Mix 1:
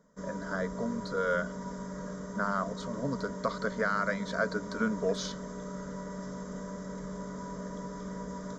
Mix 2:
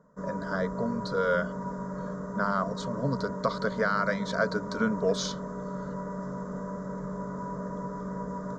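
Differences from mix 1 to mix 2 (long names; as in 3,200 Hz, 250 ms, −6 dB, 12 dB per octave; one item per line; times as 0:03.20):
background: add high shelf with overshoot 2,000 Hz −12.5 dB, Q 1.5
master: add octave-band graphic EQ 125/500/1,000/4,000/8,000 Hz +8/+3/+3/+4/+5 dB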